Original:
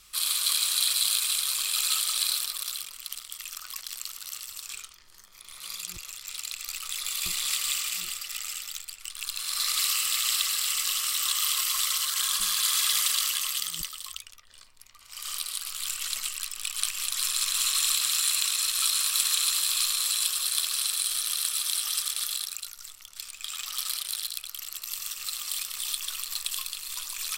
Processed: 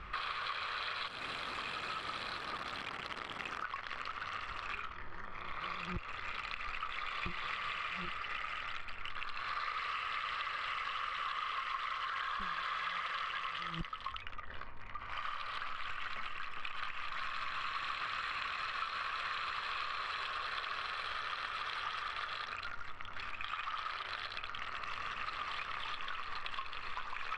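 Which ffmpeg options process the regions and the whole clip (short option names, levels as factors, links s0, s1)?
-filter_complex "[0:a]asettb=1/sr,asplit=3[s0][s1][s2];[s0]atrim=end=1.074[s3];[s1]atrim=start=1.07:end=3.64,asetpts=PTS-STARTPTS,afade=t=in:d=0.004:c=qsin,afade=t=out:st=2.566:d=0.004:c=qsin,aemphasis=mode=production:type=bsi,acompressor=threshold=0.0794:ratio=10:attack=3.2:release=140:knee=1:detection=peak,aeval=exprs='sgn(val(0))*max(abs(val(0))-0.00596,0)':c=same[s4];[s2]atrim=start=3.636[s5];[s3][s4]acrossfade=d=0.004:c1=hsin:c2=qsin[s6];[s6][s5]acrossfade=d=0.004:c1=qsin:c2=hsin,lowpass=f=1800:w=0.5412,lowpass=f=1800:w=1.3066,aemphasis=mode=production:type=50kf,acompressor=threshold=0.00224:ratio=6,volume=6.31"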